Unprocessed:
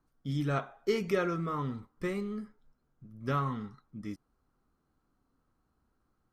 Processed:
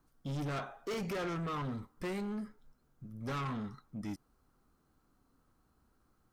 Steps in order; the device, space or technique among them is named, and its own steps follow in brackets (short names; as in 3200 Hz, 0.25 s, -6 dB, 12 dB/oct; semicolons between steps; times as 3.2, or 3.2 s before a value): high shelf 5200 Hz +5 dB; saturation between pre-emphasis and de-emphasis (high shelf 7500 Hz +10 dB; soft clip -38 dBFS, distortion -5 dB; high shelf 7500 Hz -10 dB); gain +3.5 dB